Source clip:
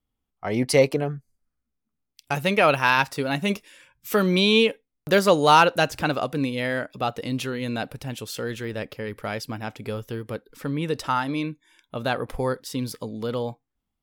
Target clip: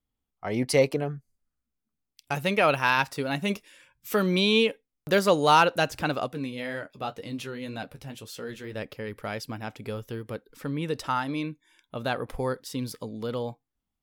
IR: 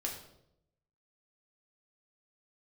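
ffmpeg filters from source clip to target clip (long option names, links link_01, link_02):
-filter_complex "[0:a]asettb=1/sr,asplit=3[link_01][link_02][link_03];[link_01]atrim=end=6.284[link_04];[link_02]atrim=start=6.28:end=8.75,asetpts=PTS-STARTPTS,afade=type=in:duration=0.004:curve=qsin,afade=type=out:start_time=2.466:duration=0.004:curve=qsin,flanger=delay=9.8:depth=4:regen=-37:speed=2:shape=triangular[link_05];[link_03]atrim=start=8.746[link_06];[link_04][link_05]acrossfade=duration=0.004:curve1=hsin:curve2=qsin[link_07];[link_07][link_06]acrossfade=duration=0.004:curve1=qsin:curve2=hsin,volume=-3.5dB"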